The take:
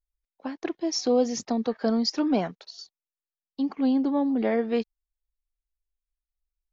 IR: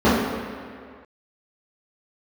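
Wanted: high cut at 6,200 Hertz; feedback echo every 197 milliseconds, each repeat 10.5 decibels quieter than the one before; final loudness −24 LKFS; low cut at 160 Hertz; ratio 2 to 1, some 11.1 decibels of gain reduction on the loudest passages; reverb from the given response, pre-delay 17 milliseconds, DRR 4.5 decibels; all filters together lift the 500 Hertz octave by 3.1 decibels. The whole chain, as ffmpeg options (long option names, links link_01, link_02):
-filter_complex "[0:a]highpass=160,lowpass=6200,equalizer=frequency=500:width_type=o:gain=3.5,acompressor=threshold=-37dB:ratio=2,aecho=1:1:197|394|591:0.299|0.0896|0.0269,asplit=2[link_01][link_02];[1:a]atrim=start_sample=2205,adelay=17[link_03];[link_02][link_03]afir=irnorm=-1:irlink=0,volume=-29.5dB[link_04];[link_01][link_04]amix=inputs=2:normalize=0,volume=3dB"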